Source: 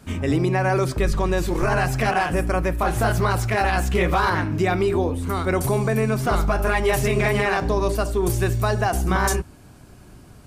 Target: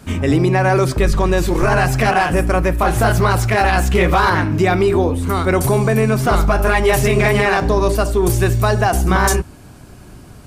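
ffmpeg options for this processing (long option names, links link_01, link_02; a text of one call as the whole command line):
ffmpeg -i in.wav -af "acontrast=69" out.wav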